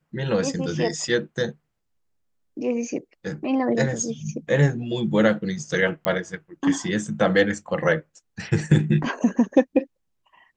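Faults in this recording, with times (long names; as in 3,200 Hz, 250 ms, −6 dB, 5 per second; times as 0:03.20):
0:06.05: click −8 dBFS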